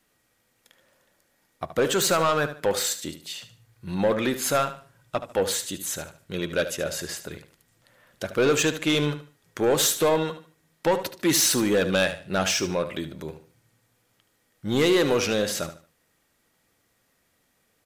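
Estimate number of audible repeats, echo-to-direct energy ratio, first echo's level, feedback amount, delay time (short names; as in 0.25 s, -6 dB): 3, -11.5 dB, -12.0 dB, 28%, 74 ms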